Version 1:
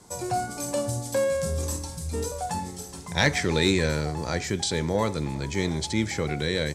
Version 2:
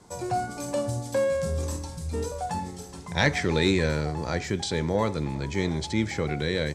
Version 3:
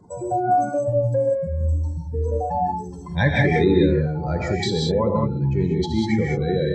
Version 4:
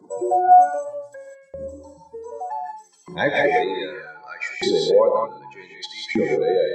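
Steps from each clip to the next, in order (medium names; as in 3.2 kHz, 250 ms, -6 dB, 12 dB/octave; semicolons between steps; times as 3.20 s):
low-pass 3.9 kHz 6 dB/octave
spectral contrast enhancement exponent 2.2; gated-style reverb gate 220 ms rising, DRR -1 dB; trim +3.5 dB
small resonant body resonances 3.4 kHz, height 7 dB; LFO high-pass saw up 0.65 Hz 290–2700 Hz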